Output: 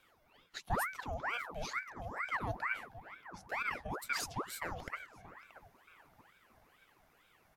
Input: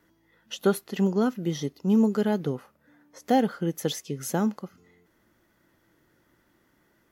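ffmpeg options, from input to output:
ffmpeg -i in.wav -filter_complex "[0:a]bandreject=frequency=50:width_type=h:width=6,bandreject=frequency=100:width_type=h:width=6,bandreject=frequency=150:width_type=h:width=6,bandreject=frequency=200:width_type=h:width=6,bandreject=frequency=250:width_type=h:width=6,bandreject=frequency=300:width_type=h:width=6,bandreject=frequency=350:width_type=h:width=6,bandreject=frequency=400:width_type=h:width=6,bandreject=frequency=450:width_type=h:width=6,bandreject=frequency=500:width_type=h:width=6,asetrate=41454,aresample=44100,areverse,acompressor=threshold=-33dB:ratio=16,areverse,lowshelf=frequency=290:width_type=q:width=3:gain=-8,asplit=2[link_01][link_02];[link_02]adelay=629,lowpass=frequency=1700:poles=1,volume=-14dB,asplit=2[link_03][link_04];[link_04]adelay=629,lowpass=frequency=1700:poles=1,volume=0.43,asplit=2[link_05][link_06];[link_06]adelay=629,lowpass=frequency=1700:poles=1,volume=0.43,asplit=2[link_07][link_08];[link_08]adelay=629,lowpass=frequency=1700:poles=1,volume=0.43[link_09];[link_01][link_03][link_05][link_07][link_09]amix=inputs=5:normalize=0,aeval=exprs='val(0)*sin(2*PI*1100*n/s+1100*0.75/2.2*sin(2*PI*2.2*n/s))':channel_layout=same,volume=1dB" out.wav

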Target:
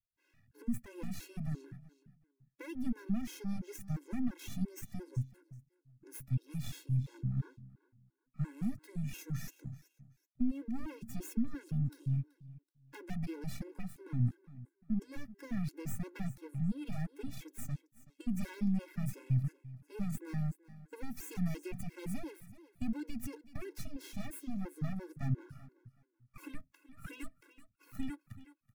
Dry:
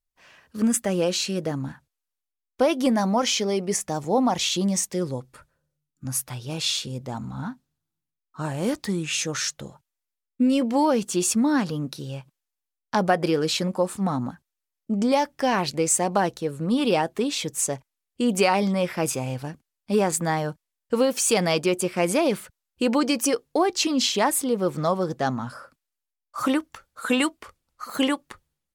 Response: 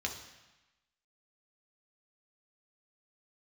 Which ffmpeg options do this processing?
-filter_complex "[0:a]acrossover=split=260|5700[link_01][link_02][link_03];[link_02]aeval=exprs='0.141*(abs(mod(val(0)/0.141+3,4)-2)-1)':channel_layout=same[link_04];[link_01][link_04][link_03]amix=inputs=3:normalize=0,equalizer=frequency=100:width_type=o:width=0.81:gain=12,asplit=2[link_05][link_06];[link_06]aecho=0:1:379|758:0.112|0.0281[link_07];[link_05][link_07]amix=inputs=2:normalize=0,aeval=exprs='max(val(0),0)':channel_layout=same,equalizer=frequency=125:width_type=o:width=1:gain=11,equalizer=frequency=250:width_type=o:width=1:gain=4,equalizer=frequency=500:width_type=o:width=1:gain=-12,equalizer=frequency=1000:width_type=o:width=1:gain=-11,equalizer=frequency=4000:width_type=o:width=1:gain=-11,equalizer=frequency=8000:width_type=o:width=1:gain=-8,acrossover=split=240[link_08][link_09];[link_09]acompressor=threshold=-33dB:ratio=6[link_10];[link_08][link_10]amix=inputs=2:normalize=0,bandreject=frequency=3000:width=8.4,afftfilt=real='re*gt(sin(2*PI*2.9*pts/sr)*(1-2*mod(floor(b*sr/1024/280),2)),0)':imag='im*gt(sin(2*PI*2.9*pts/sr)*(1-2*mod(floor(b*sr/1024/280),2)),0)':win_size=1024:overlap=0.75,volume=-7dB"

